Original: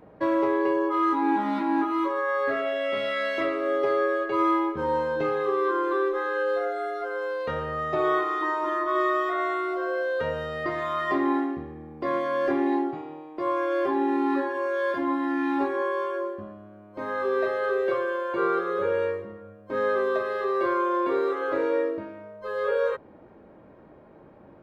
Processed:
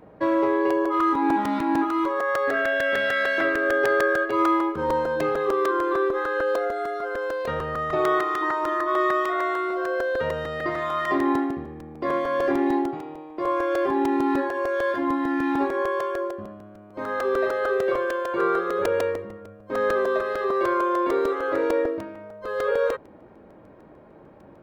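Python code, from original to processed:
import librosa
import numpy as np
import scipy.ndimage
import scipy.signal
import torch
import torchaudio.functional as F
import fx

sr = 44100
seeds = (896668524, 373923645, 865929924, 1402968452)

y = fx.dmg_tone(x, sr, hz=1600.0, level_db=-26.0, at=(2.53, 4.24), fade=0.02)
y = fx.buffer_crackle(y, sr, first_s=0.7, period_s=0.15, block=128, kind='repeat')
y = F.gain(torch.from_numpy(y), 2.0).numpy()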